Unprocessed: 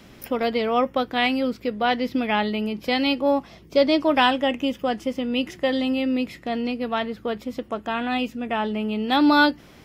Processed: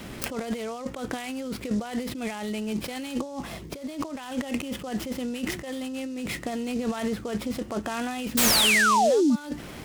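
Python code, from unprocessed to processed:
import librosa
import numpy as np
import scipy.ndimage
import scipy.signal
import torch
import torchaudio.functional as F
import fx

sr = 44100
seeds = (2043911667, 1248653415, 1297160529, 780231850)

y = fx.over_compress(x, sr, threshold_db=-32.0, ratio=-1.0)
y = fx.spec_paint(y, sr, seeds[0], shape='fall', start_s=8.37, length_s=0.99, low_hz=210.0, high_hz=9100.0, level_db=-20.0)
y = fx.noise_mod_delay(y, sr, seeds[1], noise_hz=5400.0, depth_ms=0.03)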